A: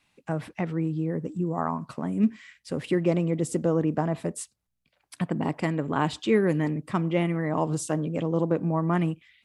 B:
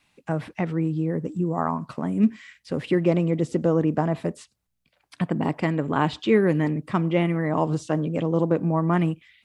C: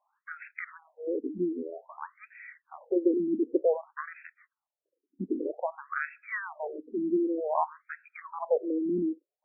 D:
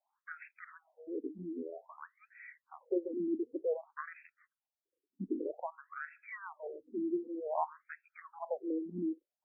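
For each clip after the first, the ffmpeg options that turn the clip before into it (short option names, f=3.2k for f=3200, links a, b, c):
-filter_complex "[0:a]acrossover=split=5200[a][b];[b]acompressor=threshold=-60dB:ratio=4:attack=1:release=60[c];[a][c]amix=inputs=2:normalize=0,volume=3dB"
-af "afftfilt=real='re*between(b*sr/1024,290*pow(1900/290,0.5+0.5*sin(2*PI*0.53*pts/sr))/1.41,290*pow(1900/290,0.5+0.5*sin(2*PI*0.53*pts/sr))*1.41)':imag='im*between(b*sr/1024,290*pow(1900/290,0.5+0.5*sin(2*PI*0.53*pts/sr))/1.41,290*pow(1900/290,0.5+0.5*sin(2*PI*0.53*pts/sr))*1.41)':win_size=1024:overlap=0.75"
-filter_complex "[0:a]asplit=2[a][b];[b]afreqshift=2.4[c];[a][c]amix=inputs=2:normalize=1,volume=-4.5dB"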